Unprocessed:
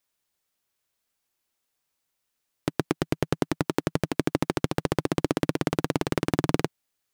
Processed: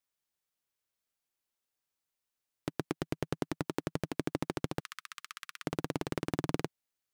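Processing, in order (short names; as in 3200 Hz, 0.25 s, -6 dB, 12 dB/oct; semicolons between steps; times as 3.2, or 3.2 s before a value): 4.8–5.65 elliptic high-pass 1200 Hz, stop band 40 dB; gain -9 dB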